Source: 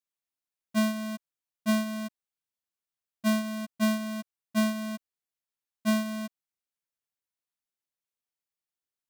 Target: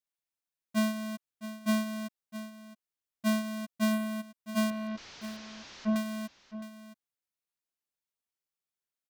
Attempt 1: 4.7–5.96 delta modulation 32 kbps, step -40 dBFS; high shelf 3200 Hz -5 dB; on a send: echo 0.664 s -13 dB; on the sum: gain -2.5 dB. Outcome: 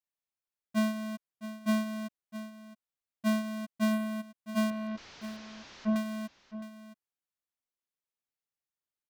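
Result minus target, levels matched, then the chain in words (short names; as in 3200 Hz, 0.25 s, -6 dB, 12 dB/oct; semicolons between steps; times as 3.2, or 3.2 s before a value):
8000 Hz band -4.0 dB
4.7–5.96 delta modulation 32 kbps, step -40 dBFS; on a send: echo 0.664 s -13 dB; on the sum: gain -2.5 dB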